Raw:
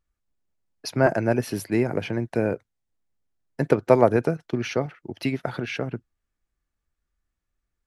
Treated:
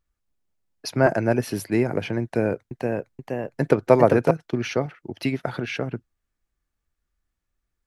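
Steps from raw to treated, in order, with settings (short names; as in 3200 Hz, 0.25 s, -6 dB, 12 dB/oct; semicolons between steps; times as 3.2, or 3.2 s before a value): 2.23–4.31 echoes that change speed 0.479 s, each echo +1 st, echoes 2; gain +1 dB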